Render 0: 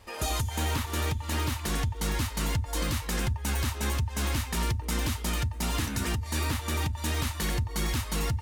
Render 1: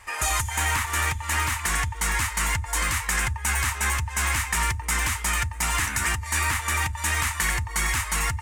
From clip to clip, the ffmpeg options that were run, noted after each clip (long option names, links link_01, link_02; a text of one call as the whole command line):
ffmpeg -i in.wav -af "equalizer=frequency=125:width_type=o:width=1:gain=-4,equalizer=frequency=250:width_type=o:width=1:gain=-9,equalizer=frequency=500:width_type=o:width=1:gain=-7,equalizer=frequency=1000:width_type=o:width=1:gain=6,equalizer=frequency=2000:width_type=o:width=1:gain=11,equalizer=frequency=4000:width_type=o:width=1:gain=-6,equalizer=frequency=8000:width_type=o:width=1:gain=10,volume=2.5dB" out.wav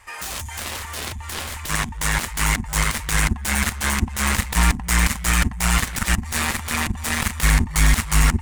ffmpeg -i in.wav -af "asubboost=boost=8:cutoff=73,aeval=exprs='0.501*(cos(1*acos(clip(val(0)/0.501,-1,1)))-cos(1*PI/2))+0.141*(cos(7*acos(clip(val(0)/0.501,-1,1)))-cos(7*PI/2))':channel_layout=same,volume=-1.5dB" out.wav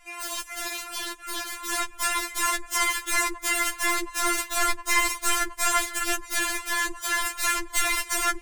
ffmpeg -i in.wav -af "afftfilt=real='re*4*eq(mod(b,16),0)':imag='im*4*eq(mod(b,16),0)':win_size=2048:overlap=0.75" out.wav